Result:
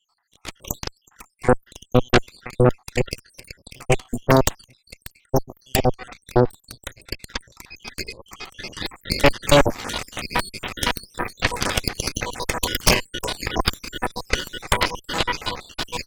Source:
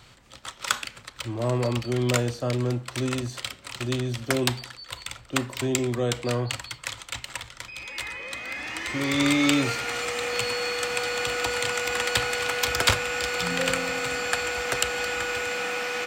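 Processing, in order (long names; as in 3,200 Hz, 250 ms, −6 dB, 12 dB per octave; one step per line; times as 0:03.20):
time-frequency cells dropped at random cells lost 81%
dynamic equaliser 5,900 Hz, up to −5 dB, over −51 dBFS, Q 1
harmonic generator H 3 −7 dB, 5 −17 dB, 8 −8 dB, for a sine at −9 dBFS
automatic gain control gain up to 11 dB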